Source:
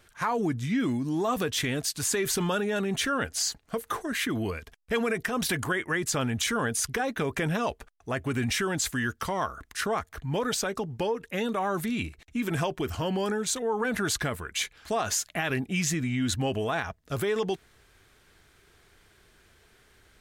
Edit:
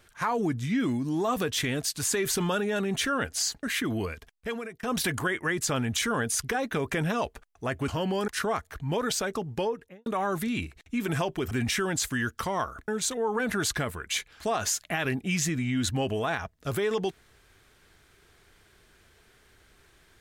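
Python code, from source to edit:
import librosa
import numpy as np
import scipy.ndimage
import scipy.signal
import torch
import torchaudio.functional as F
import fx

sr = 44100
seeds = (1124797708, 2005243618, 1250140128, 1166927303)

y = fx.studio_fade_out(x, sr, start_s=11.04, length_s=0.44)
y = fx.edit(y, sr, fx.cut(start_s=3.63, length_s=0.45),
    fx.fade_out_to(start_s=4.58, length_s=0.7, floor_db=-22.5),
    fx.swap(start_s=8.33, length_s=1.37, other_s=12.93, other_length_s=0.4), tone=tone)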